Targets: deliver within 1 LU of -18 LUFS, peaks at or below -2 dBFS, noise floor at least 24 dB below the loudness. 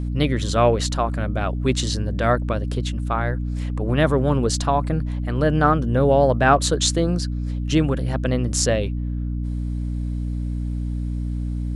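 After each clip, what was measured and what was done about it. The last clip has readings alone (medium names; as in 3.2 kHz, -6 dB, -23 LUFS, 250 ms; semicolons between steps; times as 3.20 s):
hum 60 Hz; highest harmonic 300 Hz; hum level -22 dBFS; loudness -22.0 LUFS; peak level -2.0 dBFS; loudness target -18.0 LUFS
-> hum notches 60/120/180/240/300 Hz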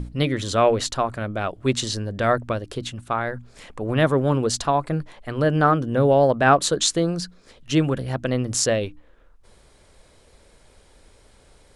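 hum not found; loudness -22.0 LUFS; peak level -3.0 dBFS; loudness target -18.0 LUFS
-> trim +4 dB; peak limiter -2 dBFS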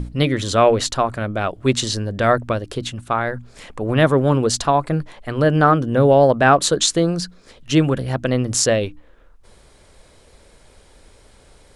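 loudness -18.0 LUFS; peak level -2.0 dBFS; noise floor -50 dBFS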